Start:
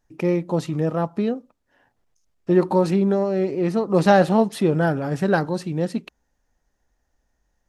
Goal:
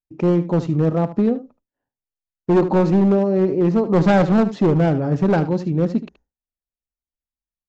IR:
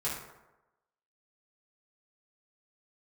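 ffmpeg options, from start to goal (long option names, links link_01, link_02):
-af "agate=range=-33dB:threshold=-46dB:ratio=3:detection=peak,tiltshelf=frequency=910:gain=6.5,aresample=16000,asoftclip=type=hard:threshold=-11dB,aresample=44100,aecho=1:1:75:0.2"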